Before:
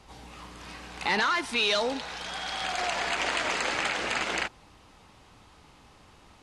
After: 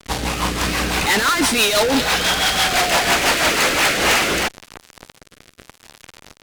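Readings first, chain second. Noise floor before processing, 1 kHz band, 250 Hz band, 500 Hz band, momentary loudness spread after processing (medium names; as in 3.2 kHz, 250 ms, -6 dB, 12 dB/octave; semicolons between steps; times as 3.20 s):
-56 dBFS, +11.0 dB, +15.5 dB, +12.0 dB, 6 LU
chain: fuzz box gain 48 dB, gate -48 dBFS; rotary cabinet horn 6 Hz, later 0.85 Hz, at 3.51 s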